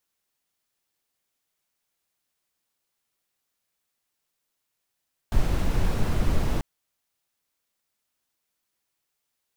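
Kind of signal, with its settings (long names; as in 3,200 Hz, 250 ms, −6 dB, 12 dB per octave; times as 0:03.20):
noise brown, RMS −21 dBFS 1.29 s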